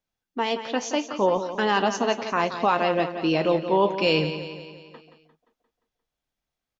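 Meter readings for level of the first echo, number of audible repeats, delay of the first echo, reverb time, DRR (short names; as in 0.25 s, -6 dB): -10.5 dB, 5, 0.175 s, none, none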